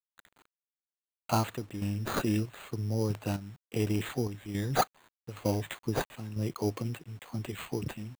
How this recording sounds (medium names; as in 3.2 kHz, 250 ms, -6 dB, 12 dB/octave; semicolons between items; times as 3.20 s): aliases and images of a low sample rate 5.4 kHz, jitter 0%; chopped level 1.1 Hz, depth 60%, duty 70%; a quantiser's noise floor 10-bit, dither none